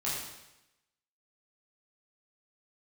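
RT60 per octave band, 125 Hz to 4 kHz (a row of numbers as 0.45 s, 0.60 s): 0.95 s, 0.95 s, 0.90 s, 0.95 s, 0.95 s, 0.90 s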